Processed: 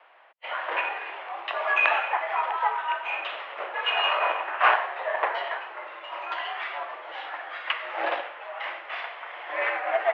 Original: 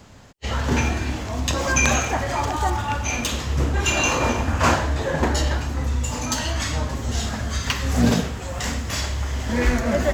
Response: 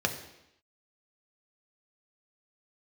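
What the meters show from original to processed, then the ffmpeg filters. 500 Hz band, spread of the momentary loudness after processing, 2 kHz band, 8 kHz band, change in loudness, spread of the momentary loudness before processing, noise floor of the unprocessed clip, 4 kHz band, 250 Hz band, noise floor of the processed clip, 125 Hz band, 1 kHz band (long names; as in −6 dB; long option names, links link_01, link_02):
−5.0 dB, 14 LU, −0.5 dB, below −40 dB, −5.0 dB, 7 LU, −31 dBFS, −4.5 dB, below −25 dB, −43 dBFS, below −40 dB, 0.0 dB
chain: -af "aeval=exprs='0.631*(cos(1*acos(clip(val(0)/0.631,-1,1)))-cos(1*PI/2))+0.0794*(cos(3*acos(clip(val(0)/0.631,-1,1)))-cos(3*PI/2))+0.0112*(cos(7*acos(clip(val(0)/0.631,-1,1)))-cos(7*PI/2))':channel_layout=same,highpass=frequency=520:width_type=q:width=0.5412,highpass=frequency=520:width_type=q:width=1.307,lowpass=frequency=2800:width_type=q:width=0.5176,lowpass=frequency=2800:width_type=q:width=0.7071,lowpass=frequency=2800:width_type=q:width=1.932,afreqshift=88,volume=4dB"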